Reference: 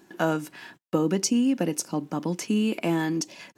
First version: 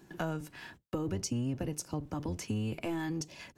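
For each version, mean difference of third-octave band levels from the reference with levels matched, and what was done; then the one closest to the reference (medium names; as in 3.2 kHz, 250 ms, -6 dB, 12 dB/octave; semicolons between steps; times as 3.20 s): 4.5 dB: octave divider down 1 oct, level +1 dB; compression 2.5:1, threshold -31 dBFS, peak gain reduction 10.5 dB; trim -4 dB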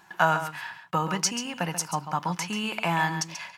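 7.0 dB: FFT filter 170 Hz 0 dB, 260 Hz -17 dB, 520 Hz -7 dB, 890 Hz +10 dB, 7.4 kHz 0 dB; on a send: delay 136 ms -10 dB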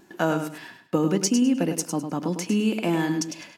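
3.0 dB: wow and flutter 26 cents; feedback delay 103 ms, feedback 24%, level -8 dB; trim +1 dB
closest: third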